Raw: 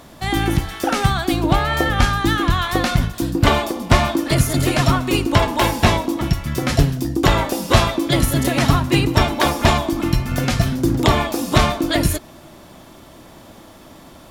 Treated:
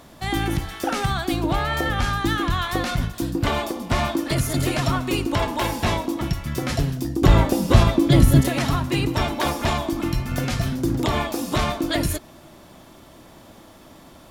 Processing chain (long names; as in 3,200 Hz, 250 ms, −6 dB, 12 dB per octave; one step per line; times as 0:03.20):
brickwall limiter −7.5 dBFS, peak gain reduction 5.5 dB
0:07.22–0:08.41: low-shelf EQ 370 Hz +11.5 dB
level −4 dB